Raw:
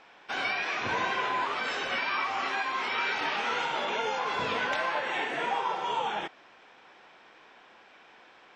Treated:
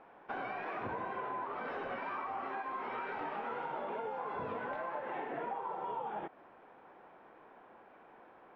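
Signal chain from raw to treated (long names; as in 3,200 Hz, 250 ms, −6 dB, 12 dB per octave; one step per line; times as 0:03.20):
low-pass filter 1,000 Hz 12 dB per octave
downward compressor, threshold −38 dBFS, peak gain reduction 10.5 dB
level +1.5 dB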